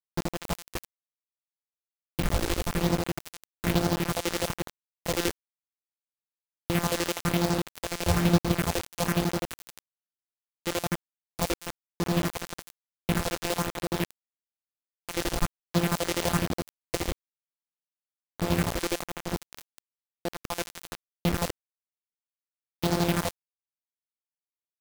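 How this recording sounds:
a buzz of ramps at a fixed pitch in blocks of 256 samples
phaser sweep stages 4, 1.1 Hz, lowest notch 140–2,400 Hz
chopped level 12 Hz, depth 60%, duty 45%
a quantiser's noise floor 6 bits, dither none

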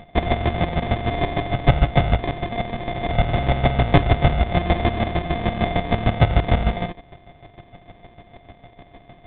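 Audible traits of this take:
a buzz of ramps at a fixed pitch in blocks of 64 samples
chopped level 6.6 Hz, depth 65%, duty 25%
aliases and images of a low sample rate 1,400 Hz, jitter 0%
mu-law

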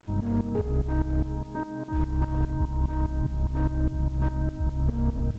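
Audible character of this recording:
tremolo saw up 4.9 Hz, depth 85%
a quantiser's noise floor 10 bits, dither none
G.722

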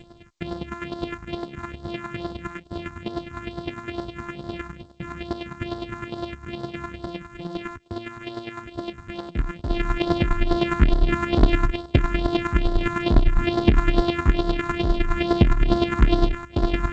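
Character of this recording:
a buzz of ramps at a fixed pitch in blocks of 128 samples
chopped level 9.8 Hz, depth 60%, duty 20%
phaser sweep stages 4, 2.3 Hz, lowest notch 520–2,400 Hz
G.722

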